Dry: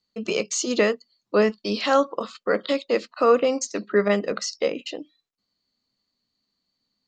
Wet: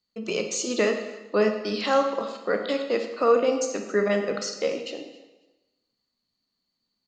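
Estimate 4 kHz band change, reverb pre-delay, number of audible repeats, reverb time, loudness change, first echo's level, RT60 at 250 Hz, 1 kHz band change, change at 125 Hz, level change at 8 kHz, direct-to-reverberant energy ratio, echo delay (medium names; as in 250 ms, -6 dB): -2.5 dB, 23 ms, 1, 1.1 s, -2.0 dB, -20.5 dB, 1.1 s, -2.0 dB, no reading, -2.5 dB, 5.0 dB, 273 ms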